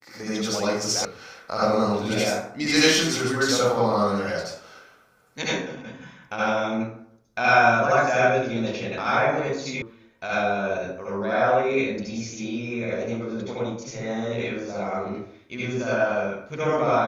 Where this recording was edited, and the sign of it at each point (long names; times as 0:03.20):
0:01.05: cut off before it has died away
0:09.82: cut off before it has died away